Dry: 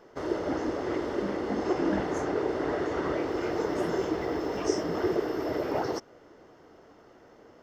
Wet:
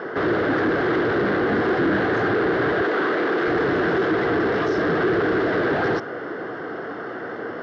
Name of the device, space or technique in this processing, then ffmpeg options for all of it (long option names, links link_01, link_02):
overdrive pedal into a guitar cabinet: -filter_complex "[0:a]asplit=2[link_01][link_02];[link_02]highpass=frequency=720:poles=1,volume=38dB,asoftclip=type=tanh:threshold=-11.5dB[link_03];[link_01][link_03]amix=inputs=2:normalize=0,lowpass=frequency=1000:poles=1,volume=-6dB,highpass=88,equalizer=frequency=110:width_type=q:width=4:gain=6,equalizer=frequency=160:width_type=q:width=4:gain=3,equalizer=frequency=590:width_type=q:width=4:gain=-6,equalizer=frequency=910:width_type=q:width=4:gain=-8,equalizer=frequency=1600:width_type=q:width=4:gain=8,equalizer=frequency=2500:width_type=q:width=4:gain=-7,lowpass=frequency=4400:width=0.5412,lowpass=frequency=4400:width=1.3066,asettb=1/sr,asplit=3[link_04][link_05][link_06];[link_04]atrim=end=2.824[link_07];[link_05]atrim=start=2.82:end=3.48,asetpts=PTS-STARTPTS,afade=type=in:duration=0.004:curve=qsin,afade=type=out:start_time=0.656:duration=0.004:curve=qsin,highpass=260[link_08];[link_06]atrim=start=3.476[link_09];[link_07][link_08]acrossfade=duration=0.004:curve1=hsin:curve2=qsin[link_10];[link_10][link_09]acrossfade=duration=0.004:curve1=qsin:curve2=hsin"